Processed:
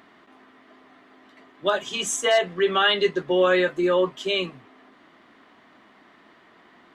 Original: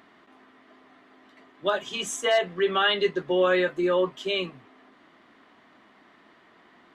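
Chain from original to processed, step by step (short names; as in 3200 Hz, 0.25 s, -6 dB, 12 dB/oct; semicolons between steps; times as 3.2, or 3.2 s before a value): dynamic EQ 7500 Hz, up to +4 dB, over -48 dBFS, Q 0.93; gain +2.5 dB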